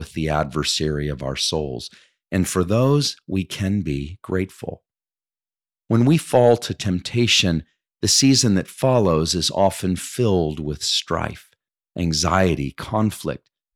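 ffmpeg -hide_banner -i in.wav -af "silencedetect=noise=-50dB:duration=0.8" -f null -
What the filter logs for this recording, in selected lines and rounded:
silence_start: 4.77
silence_end: 5.90 | silence_duration: 1.13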